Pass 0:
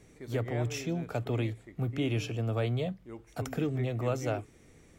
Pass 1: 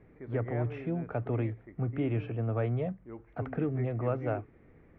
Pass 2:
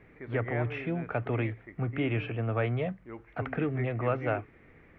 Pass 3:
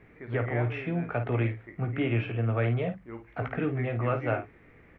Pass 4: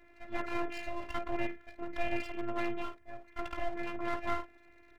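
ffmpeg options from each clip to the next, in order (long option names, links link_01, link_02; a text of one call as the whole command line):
ffmpeg -i in.wav -af "lowpass=frequency=2000:width=0.5412,lowpass=frequency=2000:width=1.3066" out.wav
ffmpeg -i in.wav -af "equalizer=frequency=2600:width_type=o:width=2.4:gain=11.5" out.wav
ffmpeg -i in.wav -af "aecho=1:1:17|52:0.398|0.355" out.wav
ffmpeg -i in.wav -af "afftfilt=real='hypot(re,im)*cos(PI*b)':imag='0':win_size=512:overlap=0.75,aeval=exprs='abs(val(0))':channel_layout=same" out.wav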